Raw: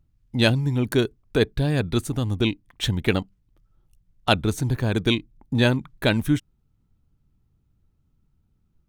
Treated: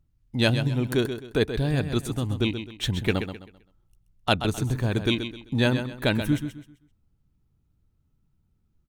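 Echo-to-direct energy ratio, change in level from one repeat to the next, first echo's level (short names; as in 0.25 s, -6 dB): -8.5 dB, -10.0 dB, -9.0 dB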